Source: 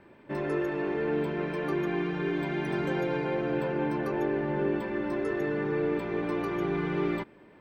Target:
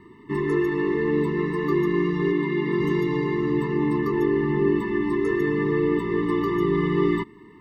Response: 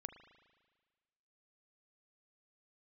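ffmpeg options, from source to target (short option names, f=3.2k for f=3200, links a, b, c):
-filter_complex "[0:a]asplit=3[a][b][c];[a]afade=t=out:st=2.32:d=0.02[d];[b]highpass=150,lowpass=4.1k,afade=t=in:st=2.32:d=0.02,afade=t=out:st=2.79:d=0.02[e];[c]afade=t=in:st=2.79:d=0.02[f];[d][e][f]amix=inputs=3:normalize=0,afftfilt=real='re*eq(mod(floor(b*sr/1024/440),2),0)':imag='im*eq(mod(floor(b*sr/1024/440),2),0)':win_size=1024:overlap=0.75,volume=8dB"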